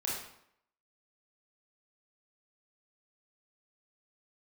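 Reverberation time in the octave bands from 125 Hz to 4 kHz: 0.65, 0.70, 0.70, 0.70, 0.65, 0.55 seconds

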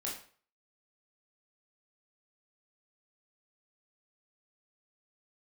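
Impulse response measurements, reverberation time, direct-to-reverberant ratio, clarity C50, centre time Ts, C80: 0.45 s, −4.5 dB, 5.5 dB, 34 ms, 10.0 dB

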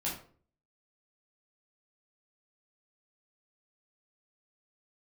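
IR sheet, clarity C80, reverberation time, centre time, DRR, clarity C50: 10.5 dB, 0.45 s, 34 ms, −6.0 dB, 5.5 dB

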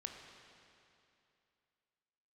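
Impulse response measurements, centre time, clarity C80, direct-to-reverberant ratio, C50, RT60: 73 ms, 4.5 dB, 2.5 dB, 4.0 dB, 2.7 s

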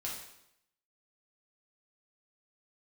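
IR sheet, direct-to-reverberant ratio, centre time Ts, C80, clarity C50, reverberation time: −4.5 dB, 44 ms, 6.5 dB, 3.0 dB, 0.80 s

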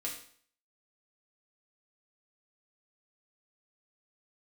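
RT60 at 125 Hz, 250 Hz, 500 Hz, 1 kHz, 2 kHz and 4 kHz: 0.55, 0.55, 0.55, 0.55, 0.55, 0.50 seconds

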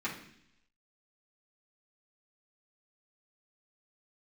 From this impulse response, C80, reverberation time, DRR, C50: 11.5 dB, 0.70 s, −8.5 dB, 7.5 dB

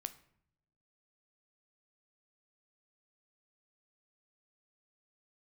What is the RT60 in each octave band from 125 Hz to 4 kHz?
1.2, 1.1, 0.70, 0.65, 0.60, 0.45 seconds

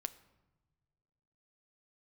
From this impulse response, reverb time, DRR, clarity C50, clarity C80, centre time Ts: non-exponential decay, 11.0 dB, 17.0 dB, 18.5 dB, 4 ms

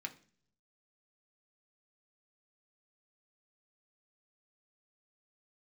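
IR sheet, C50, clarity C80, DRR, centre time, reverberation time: 16.0 dB, 20.5 dB, 3.0 dB, 6 ms, non-exponential decay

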